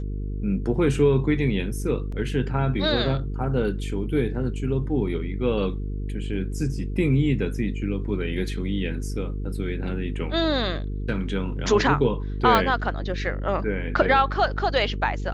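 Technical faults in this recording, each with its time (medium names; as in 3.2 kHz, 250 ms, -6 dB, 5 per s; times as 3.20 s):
buzz 50 Hz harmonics 9 -29 dBFS
2.12 s: dropout 4.1 ms
12.55 s: pop -6 dBFS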